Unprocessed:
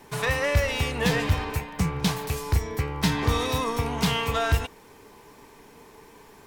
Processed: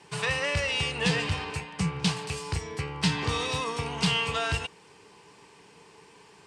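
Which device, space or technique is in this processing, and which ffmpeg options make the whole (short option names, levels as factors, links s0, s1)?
car door speaker: -af "highpass=100,equalizer=f=170:t=q:w=4:g=5,equalizer=f=250:t=q:w=4:g=-9,equalizer=f=620:t=q:w=4:g=-4,equalizer=f=2800:t=q:w=4:g=8,equalizer=f=4700:t=q:w=4:g=6,equalizer=f=8600:t=q:w=4:g=8,lowpass=f=8600:w=0.5412,lowpass=f=8600:w=1.3066,volume=0.668"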